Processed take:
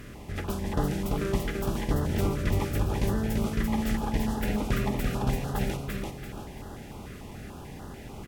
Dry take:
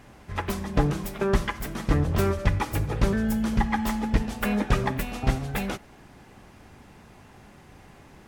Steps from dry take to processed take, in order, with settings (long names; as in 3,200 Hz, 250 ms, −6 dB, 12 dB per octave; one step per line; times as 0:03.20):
compressor on every frequency bin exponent 0.6
on a send: repeating echo 339 ms, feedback 39%, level −3 dB
on the sum: notch on a step sequencer 6.8 Hz 850–2,300 Hz
level −7 dB